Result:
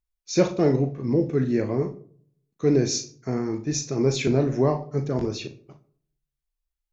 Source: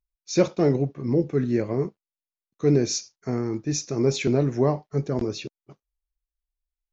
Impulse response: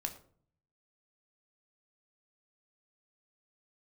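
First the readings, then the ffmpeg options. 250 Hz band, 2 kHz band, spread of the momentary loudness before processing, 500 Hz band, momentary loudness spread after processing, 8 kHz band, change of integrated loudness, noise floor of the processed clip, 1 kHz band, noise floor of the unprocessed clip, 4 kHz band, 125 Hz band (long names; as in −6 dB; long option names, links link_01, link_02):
+0.5 dB, +1.0 dB, 8 LU, +0.5 dB, 8 LU, can't be measured, +0.5 dB, −85 dBFS, +1.0 dB, below −85 dBFS, +1.0 dB, 0.0 dB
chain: -filter_complex "[0:a]asplit=2[link_01][link_02];[1:a]atrim=start_sample=2205,adelay=38[link_03];[link_02][link_03]afir=irnorm=-1:irlink=0,volume=-7dB[link_04];[link_01][link_04]amix=inputs=2:normalize=0"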